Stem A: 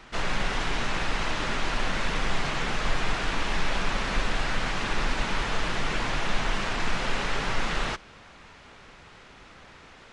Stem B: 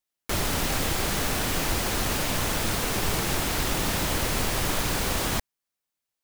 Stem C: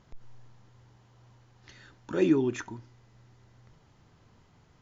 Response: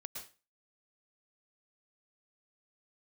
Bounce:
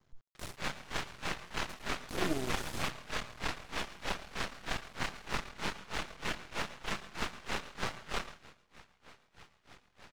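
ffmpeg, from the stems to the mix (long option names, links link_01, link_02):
-filter_complex "[0:a]highpass=45,aeval=exprs='val(0)*pow(10,-34*(0.5-0.5*cos(2*PI*3.2*n/s))/20)':channel_layout=same,adelay=350,volume=-1.5dB,asplit=2[link_01][link_02];[link_02]volume=-5dB[link_03];[1:a]lowpass=11000,adelay=100,volume=-11.5dB[link_04];[2:a]volume=-9dB,asplit=3[link_05][link_06][link_07];[link_06]volume=-5.5dB[link_08];[link_07]apad=whole_len=279544[link_09];[link_04][link_09]sidechaingate=range=-22dB:threshold=-59dB:ratio=16:detection=peak[link_10];[3:a]atrim=start_sample=2205[link_11];[link_03][link_08]amix=inputs=2:normalize=0[link_12];[link_12][link_11]afir=irnorm=-1:irlink=0[link_13];[link_01][link_10][link_05][link_13]amix=inputs=4:normalize=0,aeval=exprs='max(val(0),0)':channel_layout=same"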